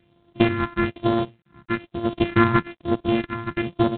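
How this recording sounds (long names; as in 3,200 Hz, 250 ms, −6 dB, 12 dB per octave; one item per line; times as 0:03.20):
a buzz of ramps at a fixed pitch in blocks of 128 samples
tremolo triangle 0.51 Hz, depth 75%
phaser sweep stages 4, 1.1 Hz, lowest notch 520–2,100 Hz
G.726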